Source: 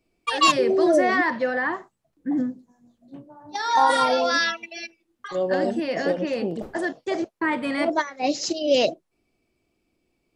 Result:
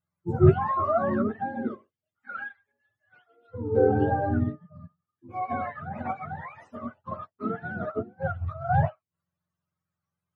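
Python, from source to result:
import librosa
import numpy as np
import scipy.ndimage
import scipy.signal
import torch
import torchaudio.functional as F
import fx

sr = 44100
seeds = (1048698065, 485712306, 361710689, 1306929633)

y = fx.octave_mirror(x, sr, pivot_hz=640.0)
y = fx.upward_expand(y, sr, threshold_db=-39.0, expansion=1.5)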